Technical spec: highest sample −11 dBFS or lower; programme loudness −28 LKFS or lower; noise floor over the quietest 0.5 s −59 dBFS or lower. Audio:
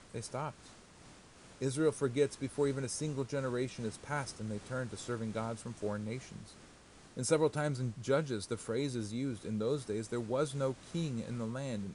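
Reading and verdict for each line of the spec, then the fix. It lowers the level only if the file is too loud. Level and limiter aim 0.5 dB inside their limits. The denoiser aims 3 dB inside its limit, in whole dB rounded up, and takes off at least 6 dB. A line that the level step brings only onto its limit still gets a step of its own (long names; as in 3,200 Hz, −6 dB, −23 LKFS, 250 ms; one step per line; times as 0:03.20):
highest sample −17.5 dBFS: in spec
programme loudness −36.5 LKFS: in spec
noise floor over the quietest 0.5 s −58 dBFS: out of spec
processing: broadband denoise 6 dB, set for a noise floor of −58 dBFS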